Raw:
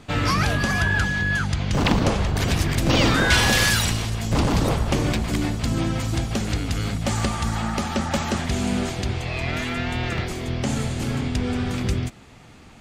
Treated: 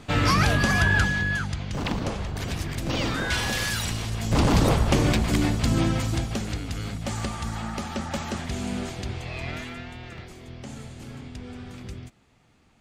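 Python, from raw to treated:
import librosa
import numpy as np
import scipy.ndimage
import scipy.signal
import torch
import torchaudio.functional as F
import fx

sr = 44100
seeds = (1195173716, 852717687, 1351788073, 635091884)

y = fx.gain(x, sr, db=fx.line((1.0, 0.5), (1.72, -8.5), (3.68, -8.5), (4.51, 1.0), (5.84, 1.0), (6.6, -6.5), (9.49, -6.5), (9.98, -14.5)))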